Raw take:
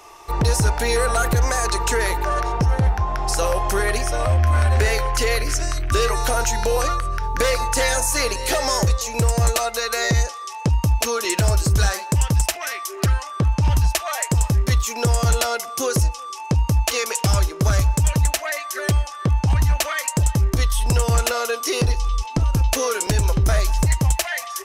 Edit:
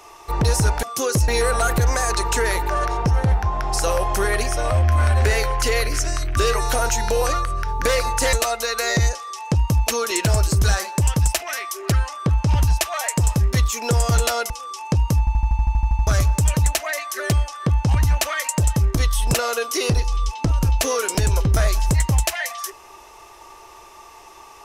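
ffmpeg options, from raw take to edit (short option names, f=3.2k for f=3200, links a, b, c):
-filter_complex "[0:a]asplit=17[a][b][c][d][e][f][g][h][i][j][k][l][m][n][o][p][q];[a]atrim=end=0.832[r];[b]atrim=start=15.638:end=16.092[s];[c]atrim=start=0.828:end=7.882[t];[d]atrim=start=9.468:end=15.642[u];[e]atrim=start=16.088:end=16.862[v];[f]atrim=start=16.778:end=16.862[w];[g]atrim=start=16.778:end=16.862[x];[h]atrim=start=16.778:end=16.862[y];[i]atrim=start=16.778:end=16.862[z];[j]atrim=start=16.778:end=16.862[aa];[k]atrim=start=16.778:end=16.862[ab];[l]atrim=start=16.778:end=16.862[ac];[m]atrim=start=16.778:end=16.862[ad];[n]atrim=start=16.778:end=16.862[ae];[o]atrim=start=16.778:end=16.862[af];[p]atrim=start=17.658:end=20.932[ag];[q]atrim=start=21.258[ah];[r][s]acrossfade=d=0.004:c1=hsin:c2=hsin[ai];[ai][t]acrossfade=d=0.004:c1=hsin:c2=hsin[aj];[aj][u]acrossfade=d=0.004:c1=hsin:c2=hsin[ak];[ak][v]acrossfade=d=0.004:c1=hsin:c2=hsin[al];[al][w]acrossfade=d=0.004:c1=hsin:c2=hsin[am];[am][x]acrossfade=d=0.004:c1=hsin:c2=hsin[an];[an][y]acrossfade=d=0.004:c1=hsin:c2=hsin[ao];[ao][z]acrossfade=d=0.004:c1=hsin:c2=hsin[ap];[ap][aa]acrossfade=d=0.004:c1=hsin:c2=hsin[aq];[aq][ab]acrossfade=d=0.004:c1=hsin:c2=hsin[ar];[ar][ac]acrossfade=d=0.004:c1=hsin:c2=hsin[as];[as][ad]acrossfade=d=0.004:c1=hsin:c2=hsin[at];[at][ae]acrossfade=d=0.004:c1=hsin:c2=hsin[au];[au][af]acrossfade=d=0.004:c1=hsin:c2=hsin[av];[av][ag]acrossfade=d=0.004:c1=hsin:c2=hsin[aw];[aw][ah]acrossfade=d=0.004:c1=hsin:c2=hsin"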